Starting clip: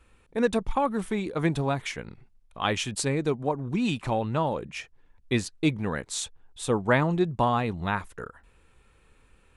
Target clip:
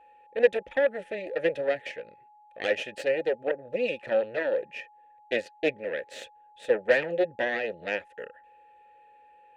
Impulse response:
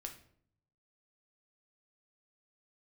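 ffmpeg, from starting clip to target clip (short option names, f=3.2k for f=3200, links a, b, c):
-filter_complex "[0:a]aeval=exprs='0.335*(cos(1*acos(clip(val(0)/0.335,-1,1)))-cos(1*PI/2))+0.0944*(cos(6*acos(clip(val(0)/0.335,-1,1)))-cos(6*PI/2))':c=same,asplit=3[a][b][c];[a]bandpass=f=530:t=q:w=8,volume=0dB[d];[b]bandpass=f=1.84k:t=q:w=8,volume=-6dB[e];[c]bandpass=f=2.48k:t=q:w=8,volume=-9dB[f];[d][e][f]amix=inputs=3:normalize=0,aeval=exprs='val(0)+0.000794*sin(2*PI*840*n/s)':c=same,volume=8.5dB"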